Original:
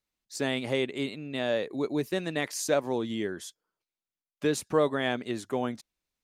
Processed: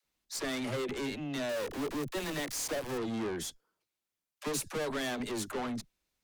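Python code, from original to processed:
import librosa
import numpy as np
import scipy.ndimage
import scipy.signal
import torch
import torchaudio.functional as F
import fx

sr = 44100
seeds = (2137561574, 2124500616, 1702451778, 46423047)

y = fx.sample_gate(x, sr, floor_db=-38.5, at=(1.49, 2.98))
y = fx.high_shelf(y, sr, hz=4700.0, db=7.5, at=(4.47, 5.51))
y = fx.tube_stage(y, sr, drive_db=39.0, bias=0.5)
y = fx.dispersion(y, sr, late='lows', ms=49.0, hz=330.0)
y = y * librosa.db_to_amplitude(6.5)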